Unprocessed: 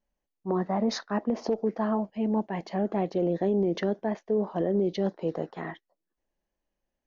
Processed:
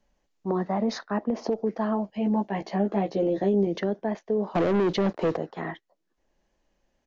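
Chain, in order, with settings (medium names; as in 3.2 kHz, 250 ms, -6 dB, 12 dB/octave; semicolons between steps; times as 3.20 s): 2.13–3.67 s: doubling 15 ms -3.5 dB; 4.55–5.37 s: waveshaping leveller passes 3; resampled via 16 kHz; three bands compressed up and down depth 40%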